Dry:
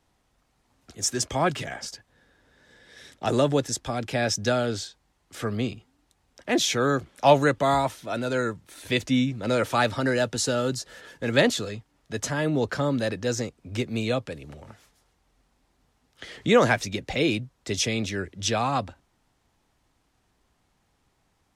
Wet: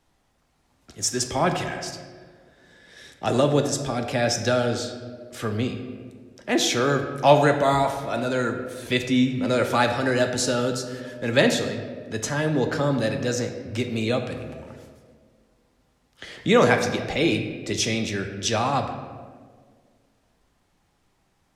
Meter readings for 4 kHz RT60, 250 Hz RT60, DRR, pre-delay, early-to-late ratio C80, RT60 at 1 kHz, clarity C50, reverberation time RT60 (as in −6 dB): 0.95 s, 2.2 s, 5.0 dB, 3 ms, 9.0 dB, 1.4 s, 7.5 dB, 1.8 s